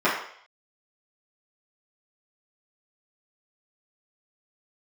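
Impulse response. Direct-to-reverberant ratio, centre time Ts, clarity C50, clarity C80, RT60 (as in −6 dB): −11.0 dB, 41 ms, 4.0 dB, 7.5 dB, 0.60 s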